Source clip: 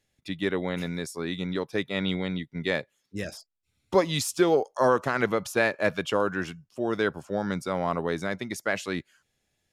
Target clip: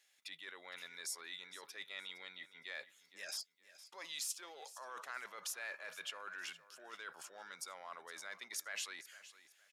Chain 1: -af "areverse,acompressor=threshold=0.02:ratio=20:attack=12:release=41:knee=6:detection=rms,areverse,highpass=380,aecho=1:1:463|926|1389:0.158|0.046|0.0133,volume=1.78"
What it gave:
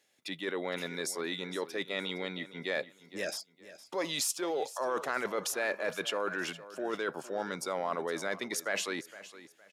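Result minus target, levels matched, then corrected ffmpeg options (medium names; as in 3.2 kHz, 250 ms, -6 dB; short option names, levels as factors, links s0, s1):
500 Hz band +11.5 dB; compression: peak gain reduction -9.5 dB
-af "areverse,acompressor=threshold=0.00631:ratio=20:attack=12:release=41:knee=6:detection=rms,areverse,highpass=1200,aecho=1:1:463|926|1389:0.158|0.046|0.0133,volume=1.78"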